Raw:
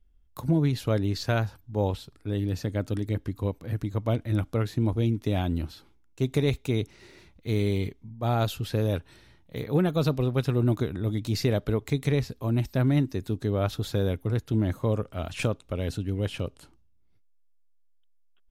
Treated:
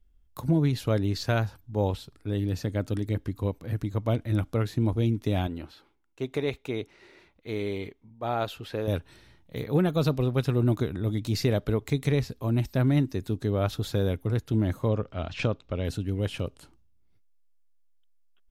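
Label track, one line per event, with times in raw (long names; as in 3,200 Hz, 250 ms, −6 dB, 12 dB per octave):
5.470000	8.880000	bass and treble bass −12 dB, treble −10 dB
14.880000	15.850000	low-pass filter 5,500 Hz 24 dB per octave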